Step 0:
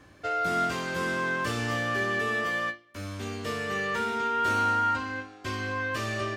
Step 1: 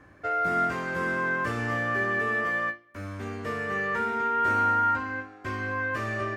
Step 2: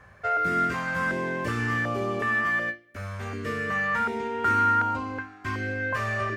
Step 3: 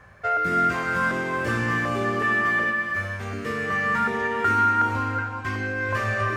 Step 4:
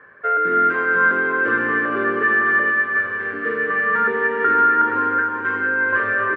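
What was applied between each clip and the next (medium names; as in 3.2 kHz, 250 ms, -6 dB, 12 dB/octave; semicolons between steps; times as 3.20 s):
resonant high shelf 2.5 kHz -8.5 dB, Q 1.5
step-sequenced notch 2.7 Hz 300–1700 Hz; trim +3.5 dB
gated-style reverb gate 480 ms rising, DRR 4.5 dB; trim +2 dB
cabinet simulation 260–2800 Hz, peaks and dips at 290 Hz +7 dB, 440 Hz +9 dB, 730 Hz -8 dB, 1.1 kHz +3 dB, 1.6 kHz +10 dB, 2.5 kHz -5 dB; feedback delay 472 ms, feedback 53%, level -10 dB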